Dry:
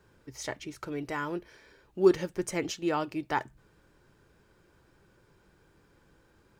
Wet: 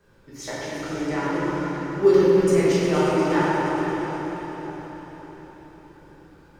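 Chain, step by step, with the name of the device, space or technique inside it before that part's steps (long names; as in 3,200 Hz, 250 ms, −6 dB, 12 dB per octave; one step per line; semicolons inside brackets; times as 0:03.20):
0:00.81–0:01.34: Butterworth low-pass 9,400 Hz 96 dB per octave
multi-head tape echo (echo machine with several playback heads 118 ms, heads first and second, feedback 74%, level −12 dB; tape wow and flutter)
feedback delay with all-pass diffusion 544 ms, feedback 40%, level −11 dB
rectangular room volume 130 cubic metres, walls hard, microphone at 1.2 metres
level −2 dB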